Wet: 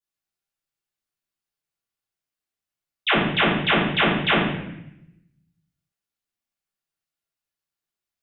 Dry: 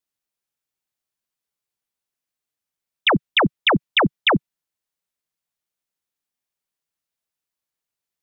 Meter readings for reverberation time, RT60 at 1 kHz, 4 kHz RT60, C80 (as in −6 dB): 0.80 s, 0.75 s, 0.70 s, 5.0 dB